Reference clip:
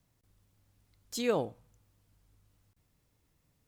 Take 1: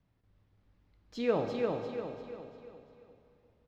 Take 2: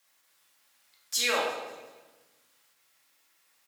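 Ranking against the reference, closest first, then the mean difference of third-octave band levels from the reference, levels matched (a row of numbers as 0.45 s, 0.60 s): 1, 2; 8.5 dB, 13.5 dB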